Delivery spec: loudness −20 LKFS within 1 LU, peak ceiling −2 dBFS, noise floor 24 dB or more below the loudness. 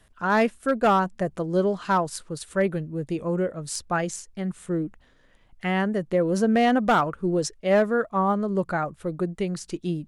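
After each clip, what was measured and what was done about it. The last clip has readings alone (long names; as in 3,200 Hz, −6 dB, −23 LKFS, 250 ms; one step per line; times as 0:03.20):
share of clipped samples 0.4%; peaks flattened at −13.5 dBFS; integrated loudness −25.0 LKFS; sample peak −13.5 dBFS; target loudness −20.0 LKFS
→ clipped peaks rebuilt −13.5 dBFS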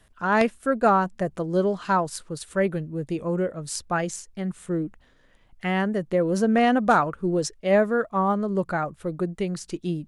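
share of clipped samples 0.0%; integrated loudness −24.5 LKFS; sample peak −5.0 dBFS; target loudness −20.0 LKFS
→ level +4.5 dB
brickwall limiter −2 dBFS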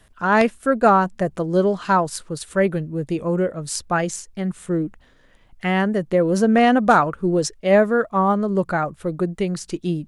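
integrated loudness −20.0 LKFS; sample peak −2.0 dBFS; background noise floor −54 dBFS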